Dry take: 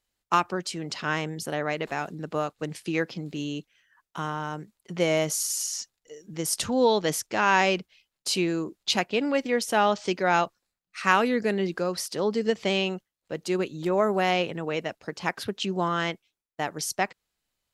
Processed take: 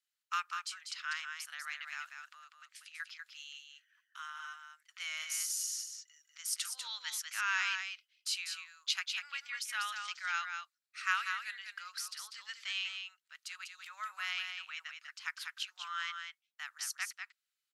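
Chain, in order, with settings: 2.33–3.00 s: compression 10:1, threshold -33 dBFS, peak gain reduction 12 dB; elliptic high-pass 1.3 kHz, stop band 80 dB; delay 195 ms -6 dB; trim -7.5 dB

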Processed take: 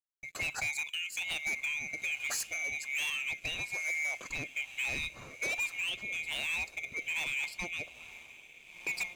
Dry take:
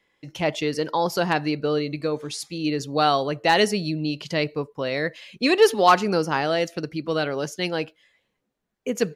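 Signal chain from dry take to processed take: split-band scrambler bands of 2 kHz; treble shelf 4.4 kHz +5.5 dB, from 3.10 s -5.5 dB; compression 10:1, threshold -27 dBFS, peak gain reduction 16 dB; echo that smears into a reverb 1451 ms, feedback 41%, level -15 dB; crossover distortion -55 dBFS; rotary cabinet horn 1.2 Hz; hard clipper -30 dBFS, distortion -11 dB

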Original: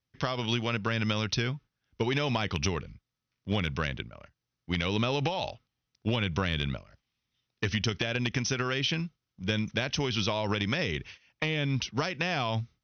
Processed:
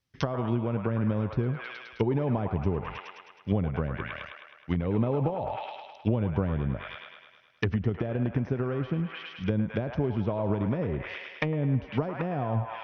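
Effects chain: feedback echo behind a band-pass 105 ms, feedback 62%, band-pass 1.4 kHz, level -3 dB; low-pass that closes with the level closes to 640 Hz, closed at -26 dBFS; trim +3.5 dB

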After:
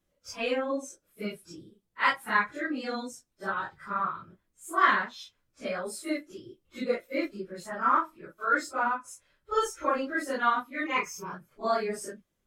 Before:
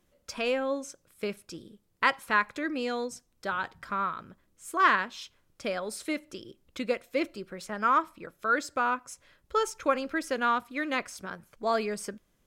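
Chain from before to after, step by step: phase randomisation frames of 100 ms; spectral noise reduction 8 dB; 10.86–11.34 s: rippled EQ curve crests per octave 0.78, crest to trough 16 dB

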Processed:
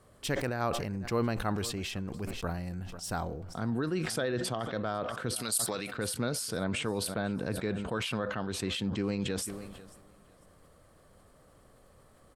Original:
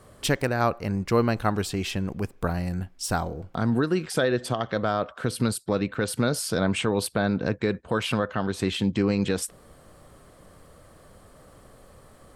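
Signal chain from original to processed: 5.36–5.93 s: tilt EQ +4 dB/octave; feedback delay 497 ms, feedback 33%, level -22 dB; decay stretcher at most 36 dB/s; trim -9 dB

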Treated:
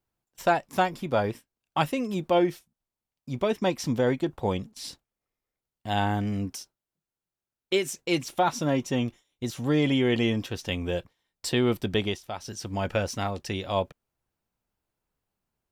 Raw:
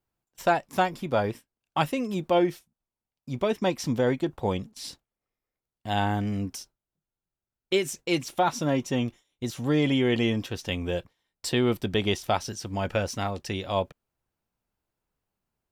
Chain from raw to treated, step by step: 6.52–8.02 s: bass shelf 95 Hz -10.5 dB; 11.98–12.60 s: dip -10.5 dB, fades 0.24 s

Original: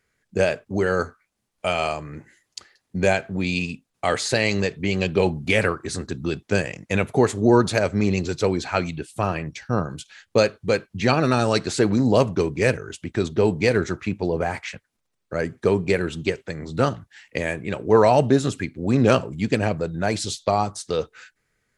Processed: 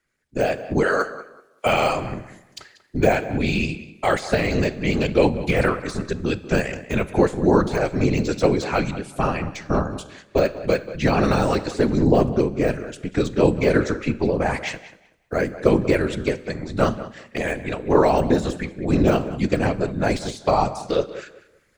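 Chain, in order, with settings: 0.83–1.66 s: high-pass 490 Hz 12 dB/octave; de-esser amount 80%; 12.00–12.67 s: tilt shelf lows +3.5 dB; level rider gain up to 12 dB; whisper effect; 14.72–15.51 s: companded quantiser 8-bit; on a send: tape echo 189 ms, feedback 25%, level -14 dB, low-pass 3.1 kHz; on the sum: Schroeder reverb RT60 0.9 s, combs from 30 ms, DRR 18 dB; trim -4 dB

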